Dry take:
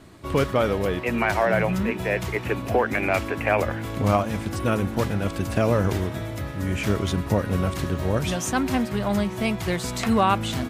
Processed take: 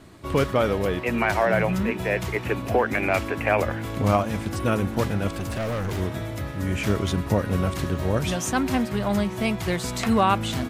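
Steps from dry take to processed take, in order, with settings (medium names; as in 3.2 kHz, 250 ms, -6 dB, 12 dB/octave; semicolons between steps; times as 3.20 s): 5.31–5.98 s: overload inside the chain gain 25 dB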